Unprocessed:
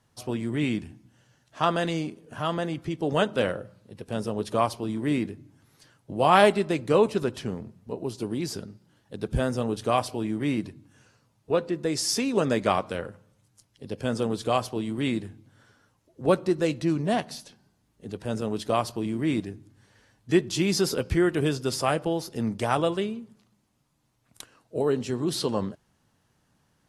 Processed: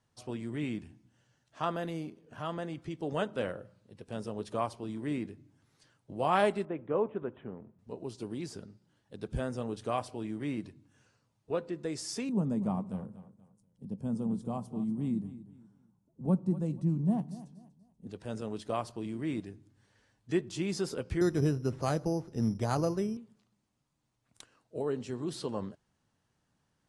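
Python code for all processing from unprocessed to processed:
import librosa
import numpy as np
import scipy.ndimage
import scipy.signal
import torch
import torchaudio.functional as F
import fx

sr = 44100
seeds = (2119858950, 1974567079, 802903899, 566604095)

y = fx.chain(x, sr, fx.dynamic_eq(hz=2500.0, q=0.73, threshold_db=-45.0, ratio=4.0, max_db=-3),
    fx.resample_bad(factor=3, down='filtered', up='hold'), at=(1.76, 2.38))
y = fx.chain(y, sr, fx.lowpass(hz=1400.0, slope=12),
    fx.low_shelf(hz=130.0, db=-10.5),
    fx.resample_bad(factor=6, down='none', up='filtered'), at=(6.65, 7.79))
y = fx.chain(y, sr, fx.curve_eq(hz=(110.0, 190.0, 340.0, 590.0, 910.0, 1600.0, 4200.0, 9400.0), db=(0, 13, -5, -8, -3, -19, -19, -6)),
    fx.echo_feedback(ms=241, feedback_pct=31, wet_db=-15.5), at=(12.29, 18.07))
y = fx.chain(y, sr, fx.low_shelf(hz=250.0, db=11.5),
    fx.resample_bad(factor=8, down='filtered', up='hold'), at=(21.21, 23.17))
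y = scipy.signal.sosfilt(scipy.signal.butter(6, 10000.0, 'lowpass', fs=sr, output='sos'), y)
y = fx.dynamic_eq(y, sr, hz=4500.0, q=0.73, threshold_db=-42.0, ratio=4.0, max_db=-5)
y = F.gain(torch.from_numpy(y), -8.5).numpy()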